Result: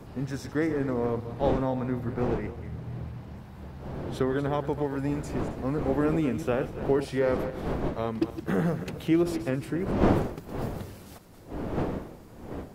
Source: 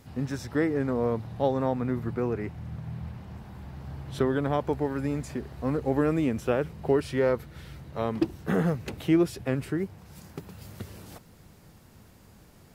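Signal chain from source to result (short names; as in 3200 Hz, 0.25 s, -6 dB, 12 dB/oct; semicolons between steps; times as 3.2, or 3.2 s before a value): regenerating reverse delay 0.134 s, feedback 43%, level -10.5 dB; wind noise 430 Hz -33 dBFS; gain -1.5 dB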